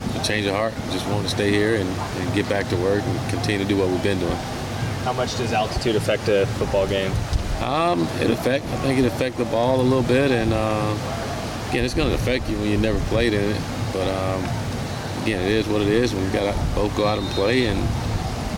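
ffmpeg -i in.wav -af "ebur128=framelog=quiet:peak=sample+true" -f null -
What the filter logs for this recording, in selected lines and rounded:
Integrated loudness:
  I:         -22.1 LUFS
  Threshold: -32.1 LUFS
Loudness range:
  LRA:         2.1 LU
  Threshold: -42.1 LUFS
  LRA low:   -22.9 LUFS
  LRA high:  -20.8 LUFS
Sample peak:
  Peak:       -7.9 dBFS
True peak:
  Peak:       -7.9 dBFS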